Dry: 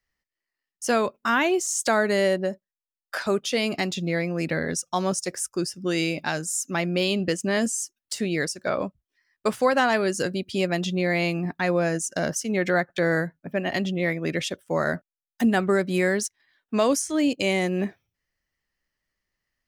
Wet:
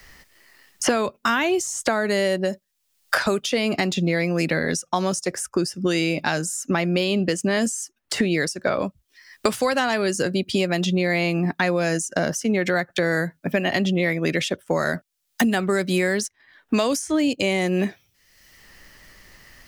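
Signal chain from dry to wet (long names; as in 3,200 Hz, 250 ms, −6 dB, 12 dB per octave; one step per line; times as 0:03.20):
in parallel at −1.5 dB: brickwall limiter −18 dBFS, peak gain reduction 8 dB
on the sum: multiband upward and downward compressor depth 100%
level −2.5 dB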